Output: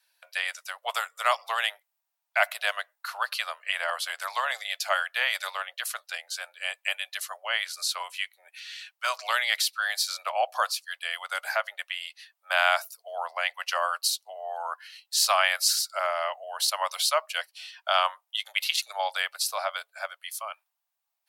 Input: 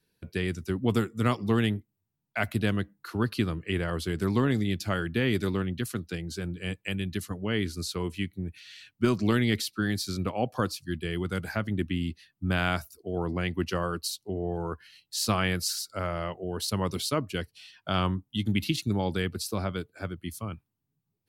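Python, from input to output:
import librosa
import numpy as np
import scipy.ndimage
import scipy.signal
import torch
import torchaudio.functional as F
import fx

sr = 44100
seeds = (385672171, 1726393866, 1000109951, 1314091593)

y = scipy.signal.sosfilt(scipy.signal.butter(12, 600.0, 'highpass', fs=sr, output='sos'), x)
y = y * librosa.db_to_amplitude(7.0)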